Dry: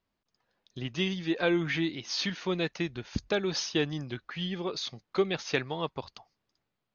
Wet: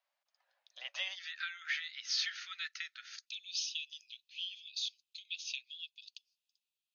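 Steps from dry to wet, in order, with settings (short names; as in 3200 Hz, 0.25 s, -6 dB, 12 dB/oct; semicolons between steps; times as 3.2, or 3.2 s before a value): compressor, threshold -28 dBFS, peak gain reduction 8 dB; rippled Chebyshev high-pass 540 Hz, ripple 3 dB, from 1.15 s 1300 Hz, from 3.25 s 2500 Hz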